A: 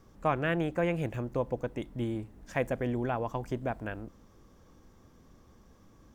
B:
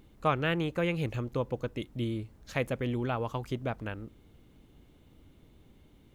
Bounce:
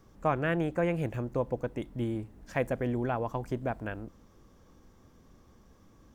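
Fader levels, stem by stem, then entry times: -0.5 dB, -16.5 dB; 0.00 s, 0.00 s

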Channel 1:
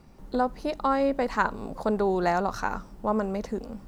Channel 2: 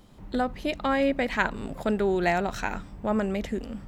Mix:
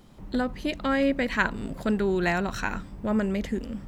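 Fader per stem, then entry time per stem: -6.5 dB, 0.0 dB; 0.00 s, 0.00 s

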